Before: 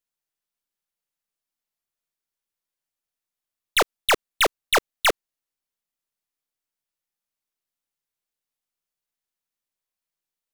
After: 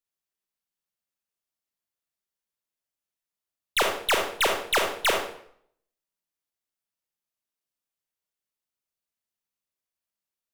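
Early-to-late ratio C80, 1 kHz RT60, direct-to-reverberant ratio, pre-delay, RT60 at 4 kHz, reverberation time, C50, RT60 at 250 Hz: 8.0 dB, 0.65 s, 2.0 dB, 30 ms, 0.55 s, 0.65 s, 4.5 dB, 0.65 s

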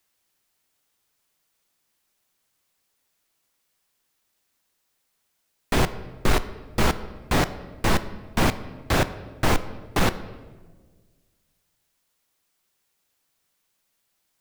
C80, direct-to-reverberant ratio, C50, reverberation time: 16.0 dB, 12.0 dB, 14.5 dB, 1.5 s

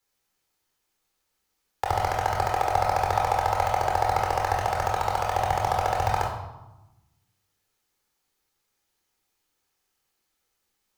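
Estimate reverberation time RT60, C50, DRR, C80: 1.0 s, 4.0 dB, −1.0 dB, 7.0 dB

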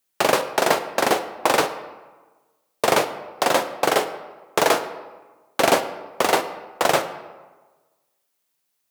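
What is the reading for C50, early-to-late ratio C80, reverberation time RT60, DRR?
11.5 dB, 13.0 dB, 1.3 s, 9.5 dB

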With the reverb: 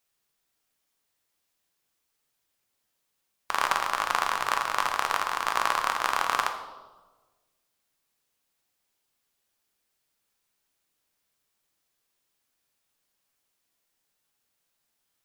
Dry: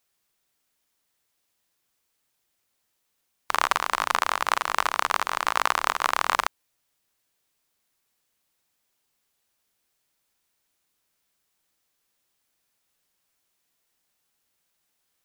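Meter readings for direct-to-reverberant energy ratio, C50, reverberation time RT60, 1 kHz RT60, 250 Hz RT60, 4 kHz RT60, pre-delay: 5.0 dB, 8.5 dB, 1.3 s, 1.2 s, 1.4 s, 0.95 s, 7 ms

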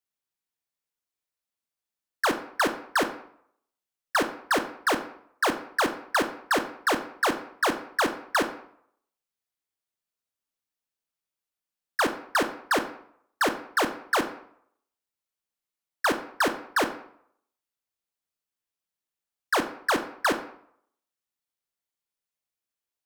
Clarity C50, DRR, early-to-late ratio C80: 11.5 dB, 8.0 dB, 14.5 dB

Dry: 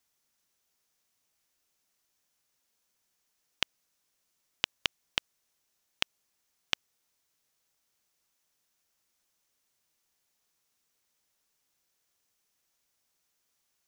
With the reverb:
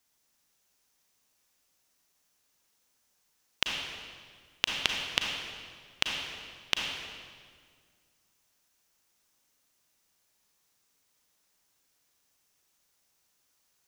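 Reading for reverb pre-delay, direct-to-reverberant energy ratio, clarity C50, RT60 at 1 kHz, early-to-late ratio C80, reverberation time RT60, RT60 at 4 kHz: 33 ms, 0.5 dB, 1.0 dB, 1.8 s, 3.0 dB, 1.9 s, 1.5 s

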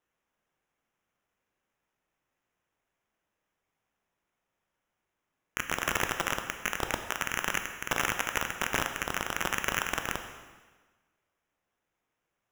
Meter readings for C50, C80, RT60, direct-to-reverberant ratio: 7.5 dB, 9.0 dB, 1.4 s, 6.0 dB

